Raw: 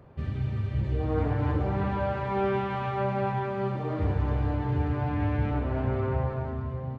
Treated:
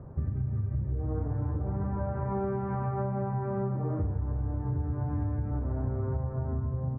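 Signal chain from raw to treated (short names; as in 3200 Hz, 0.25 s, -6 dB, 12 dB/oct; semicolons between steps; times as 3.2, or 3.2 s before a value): LPF 1500 Hz 24 dB/oct; low shelf 290 Hz +10.5 dB; compressor 12:1, threshold -27 dBFS, peak gain reduction 15 dB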